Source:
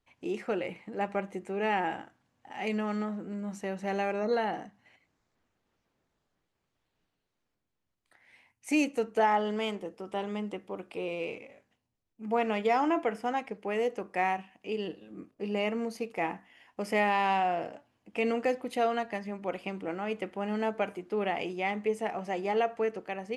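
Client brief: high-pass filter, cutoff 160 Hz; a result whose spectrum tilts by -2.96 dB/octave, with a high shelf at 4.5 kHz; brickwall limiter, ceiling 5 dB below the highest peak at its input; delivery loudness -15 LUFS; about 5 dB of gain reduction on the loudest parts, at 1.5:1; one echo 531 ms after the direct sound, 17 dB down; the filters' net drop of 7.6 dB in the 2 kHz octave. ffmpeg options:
-af "highpass=160,equalizer=f=2000:t=o:g=-8,highshelf=f=4500:g=-6.5,acompressor=threshold=0.0141:ratio=1.5,alimiter=level_in=1.33:limit=0.0631:level=0:latency=1,volume=0.75,aecho=1:1:531:0.141,volume=14.1"

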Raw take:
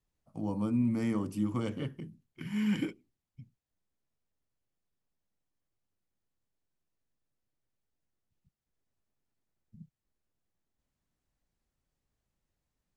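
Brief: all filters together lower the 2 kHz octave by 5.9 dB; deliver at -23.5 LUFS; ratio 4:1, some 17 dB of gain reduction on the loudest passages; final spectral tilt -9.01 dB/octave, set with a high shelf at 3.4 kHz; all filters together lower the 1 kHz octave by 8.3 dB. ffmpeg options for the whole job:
-af "equalizer=f=1000:t=o:g=-9,equalizer=f=2000:t=o:g=-6,highshelf=f=3400:g=4,acompressor=threshold=0.00447:ratio=4,volume=21.1"

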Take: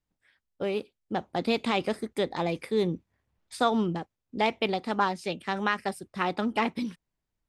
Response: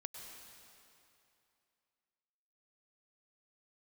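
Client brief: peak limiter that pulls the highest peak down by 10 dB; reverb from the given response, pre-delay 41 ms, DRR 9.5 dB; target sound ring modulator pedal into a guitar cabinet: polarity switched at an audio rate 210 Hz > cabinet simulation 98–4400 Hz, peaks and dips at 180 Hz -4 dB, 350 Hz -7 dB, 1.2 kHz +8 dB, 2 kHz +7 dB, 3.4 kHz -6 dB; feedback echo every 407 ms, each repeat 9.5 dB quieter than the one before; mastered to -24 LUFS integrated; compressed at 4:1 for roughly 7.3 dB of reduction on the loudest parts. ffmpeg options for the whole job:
-filter_complex "[0:a]acompressor=threshold=0.0355:ratio=4,alimiter=level_in=1.26:limit=0.0631:level=0:latency=1,volume=0.794,aecho=1:1:407|814|1221|1628:0.335|0.111|0.0365|0.012,asplit=2[s0][s1];[1:a]atrim=start_sample=2205,adelay=41[s2];[s1][s2]afir=irnorm=-1:irlink=0,volume=0.473[s3];[s0][s3]amix=inputs=2:normalize=0,aeval=exprs='val(0)*sgn(sin(2*PI*210*n/s))':c=same,highpass=98,equalizer=f=180:t=q:w=4:g=-4,equalizer=f=350:t=q:w=4:g=-7,equalizer=f=1200:t=q:w=4:g=8,equalizer=f=2000:t=q:w=4:g=7,equalizer=f=3400:t=q:w=4:g=-6,lowpass=f=4400:w=0.5412,lowpass=f=4400:w=1.3066,volume=4.22"

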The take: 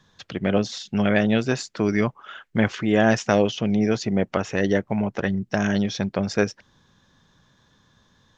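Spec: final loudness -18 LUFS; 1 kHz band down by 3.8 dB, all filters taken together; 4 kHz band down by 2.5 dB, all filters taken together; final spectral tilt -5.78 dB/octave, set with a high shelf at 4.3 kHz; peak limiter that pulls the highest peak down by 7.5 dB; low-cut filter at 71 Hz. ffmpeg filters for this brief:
-af "highpass=71,equalizer=f=1000:t=o:g=-6,equalizer=f=4000:t=o:g=-7,highshelf=f=4300:g=6.5,volume=2.37,alimiter=limit=0.631:level=0:latency=1"

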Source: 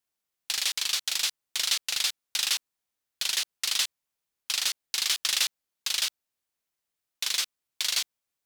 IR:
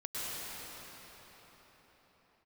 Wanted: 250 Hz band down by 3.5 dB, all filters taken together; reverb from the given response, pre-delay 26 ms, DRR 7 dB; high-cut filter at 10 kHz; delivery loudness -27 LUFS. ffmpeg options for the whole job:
-filter_complex "[0:a]lowpass=10000,equalizer=f=250:t=o:g=-5,asplit=2[s0][s1];[1:a]atrim=start_sample=2205,adelay=26[s2];[s1][s2]afir=irnorm=-1:irlink=0,volume=0.251[s3];[s0][s3]amix=inputs=2:normalize=0,volume=1.06"

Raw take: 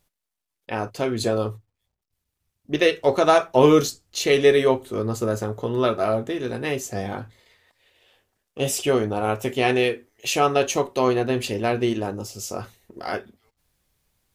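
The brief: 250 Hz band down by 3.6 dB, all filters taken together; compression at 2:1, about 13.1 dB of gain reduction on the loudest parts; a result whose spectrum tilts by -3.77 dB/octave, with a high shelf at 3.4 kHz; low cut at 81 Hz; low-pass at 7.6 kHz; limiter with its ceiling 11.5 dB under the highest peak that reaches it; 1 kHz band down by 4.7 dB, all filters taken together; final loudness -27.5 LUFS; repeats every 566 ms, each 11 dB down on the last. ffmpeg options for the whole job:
-af "highpass=81,lowpass=7600,equalizer=f=250:t=o:g=-4.5,equalizer=f=1000:t=o:g=-7.5,highshelf=f=3400:g=8,acompressor=threshold=0.0141:ratio=2,alimiter=level_in=1.5:limit=0.0631:level=0:latency=1,volume=0.668,aecho=1:1:566|1132|1698:0.282|0.0789|0.0221,volume=3.35"

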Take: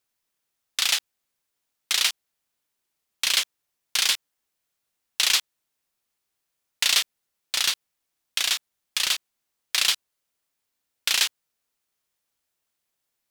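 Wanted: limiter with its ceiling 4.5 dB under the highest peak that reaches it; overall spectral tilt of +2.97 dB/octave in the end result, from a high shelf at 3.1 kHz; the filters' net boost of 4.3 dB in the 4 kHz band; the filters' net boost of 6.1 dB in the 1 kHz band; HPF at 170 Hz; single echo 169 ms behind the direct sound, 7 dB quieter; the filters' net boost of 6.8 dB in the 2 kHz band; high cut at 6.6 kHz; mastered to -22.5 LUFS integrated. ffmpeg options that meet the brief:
-af "highpass=170,lowpass=6600,equalizer=f=1000:t=o:g=5.5,equalizer=f=2000:t=o:g=8,highshelf=f=3100:g=-8.5,equalizer=f=4000:t=o:g=9,alimiter=limit=0.501:level=0:latency=1,aecho=1:1:169:0.447,volume=0.841"

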